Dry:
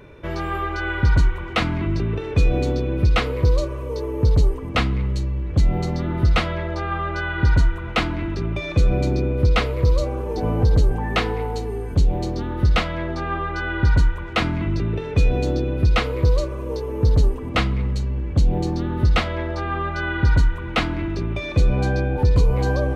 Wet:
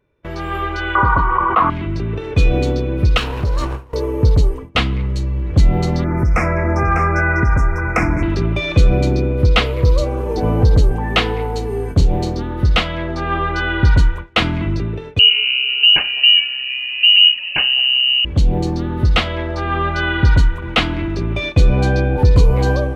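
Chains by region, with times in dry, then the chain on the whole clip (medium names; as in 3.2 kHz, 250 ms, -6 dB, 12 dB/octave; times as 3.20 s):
0.95–1.70 s: resonant low-pass 1.1 kHz, resonance Q 11 + bass shelf 250 Hz -11 dB + level flattener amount 70%
3.17–3.94 s: comb filter that takes the minimum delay 0.72 ms + compression 4:1, threshold -18 dBFS
6.04–8.23 s: Chebyshev band-stop 2.4–5.3 kHz, order 4 + compression, threshold -19 dBFS + delay 599 ms -7.5 dB
11.67–12.37 s: peaking EQ 62 Hz -13.5 dB 0.22 oct + doubling 35 ms -10 dB
15.19–18.25 s: frequency inversion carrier 2.9 kHz + delay 80 ms -24 dB
whole clip: gate with hold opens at -20 dBFS; dynamic bell 3.1 kHz, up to +7 dB, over -42 dBFS, Q 2.2; level rider; trim -1 dB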